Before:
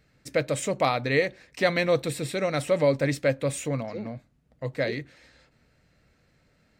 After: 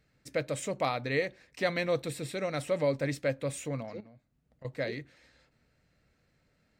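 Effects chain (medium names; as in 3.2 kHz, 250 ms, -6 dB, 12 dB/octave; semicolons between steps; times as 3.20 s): 4.00–4.65 s: compression 12:1, threshold -45 dBFS, peak gain reduction 15 dB; trim -6.5 dB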